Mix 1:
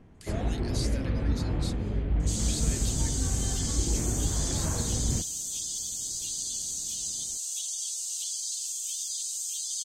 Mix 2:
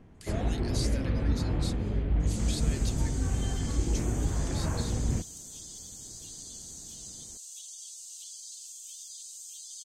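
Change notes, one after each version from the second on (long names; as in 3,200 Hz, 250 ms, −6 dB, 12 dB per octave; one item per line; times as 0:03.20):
second sound −11.0 dB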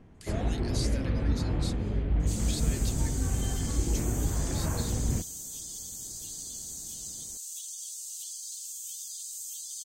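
second sound: remove high-frequency loss of the air 52 metres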